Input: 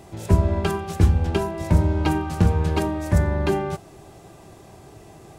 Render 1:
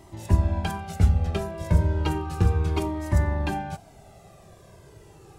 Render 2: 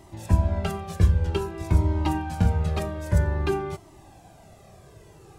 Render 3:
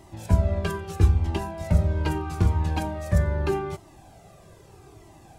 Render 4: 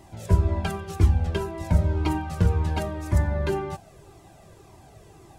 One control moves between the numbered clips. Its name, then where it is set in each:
cascading flanger, rate: 0.33, 0.52, 0.79, 1.9 Hz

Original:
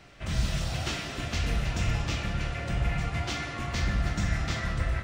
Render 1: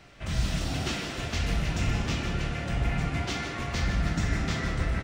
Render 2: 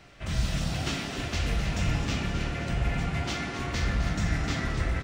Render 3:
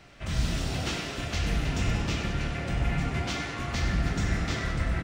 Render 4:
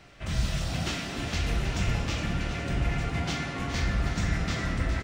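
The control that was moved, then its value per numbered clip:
frequency-shifting echo, time: 155, 261, 97, 413 ms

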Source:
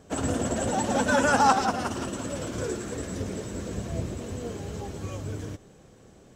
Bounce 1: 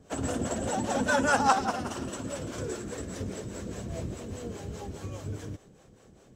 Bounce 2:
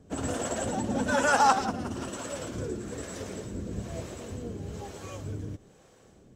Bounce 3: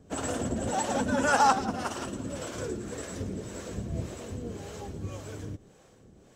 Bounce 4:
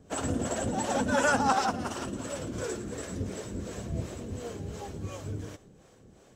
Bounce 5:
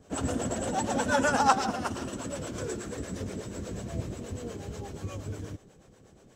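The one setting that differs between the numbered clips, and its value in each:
harmonic tremolo, rate: 4.9, 1.1, 1.8, 2.8, 8.3 Hz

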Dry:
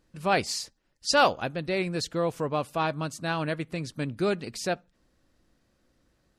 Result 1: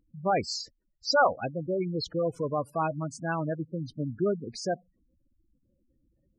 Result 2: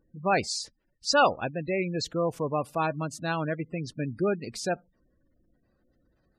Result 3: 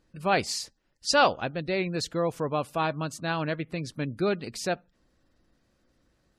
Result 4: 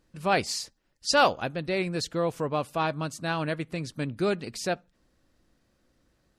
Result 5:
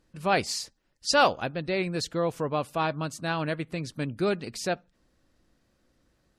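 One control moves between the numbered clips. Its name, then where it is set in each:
spectral gate, under each frame's peak: -10, -20, -35, -60, -45 dB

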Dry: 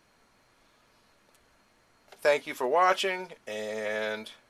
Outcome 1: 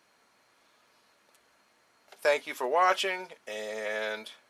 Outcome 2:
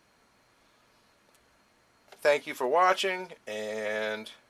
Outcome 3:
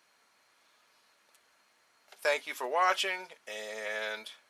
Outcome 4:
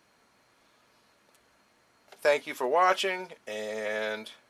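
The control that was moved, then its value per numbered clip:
HPF, cutoff: 410, 41, 1100, 130 Hz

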